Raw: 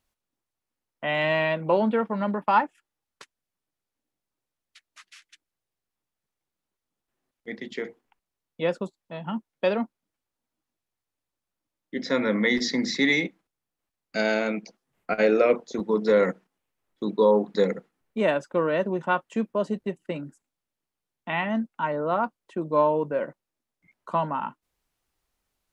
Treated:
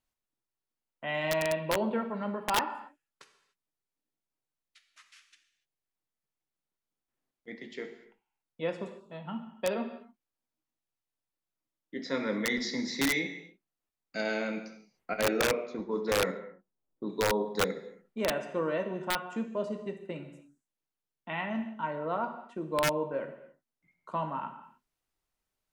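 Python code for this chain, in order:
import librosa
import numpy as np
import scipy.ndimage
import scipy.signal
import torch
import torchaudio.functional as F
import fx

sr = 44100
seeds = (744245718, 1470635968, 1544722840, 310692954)

y = fx.rev_gated(x, sr, seeds[0], gate_ms=320, shape='falling', drr_db=5.5)
y = (np.mod(10.0 ** (11.5 / 20.0) * y + 1.0, 2.0) - 1.0) / 10.0 ** (11.5 / 20.0)
y = fx.env_lowpass(y, sr, base_hz=650.0, full_db=-17.5, at=(15.41, 17.1))
y = y * librosa.db_to_amplitude(-8.0)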